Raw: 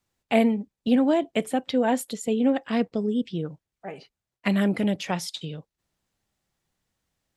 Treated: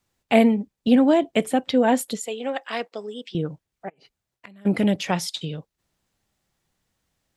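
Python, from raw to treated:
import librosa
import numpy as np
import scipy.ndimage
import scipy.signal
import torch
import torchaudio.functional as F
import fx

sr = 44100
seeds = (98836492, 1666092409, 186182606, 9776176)

y = fx.highpass(x, sr, hz=670.0, slope=12, at=(2.23, 3.35))
y = fx.gate_flip(y, sr, shuts_db=-28.0, range_db=-30, at=(3.88, 4.65), fade=0.02)
y = F.gain(torch.from_numpy(y), 4.0).numpy()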